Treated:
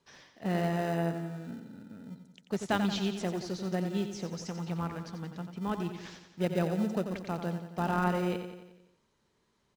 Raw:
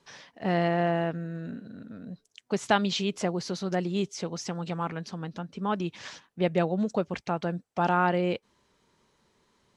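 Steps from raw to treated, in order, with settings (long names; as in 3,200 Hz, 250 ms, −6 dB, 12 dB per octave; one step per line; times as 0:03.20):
dynamic equaliser 180 Hz, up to +3 dB, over −39 dBFS, Q 0.87
in parallel at −11 dB: decimation without filtering 40×
on the sum: repeating echo 89 ms, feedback 56%, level −8.5 dB
level −7.5 dB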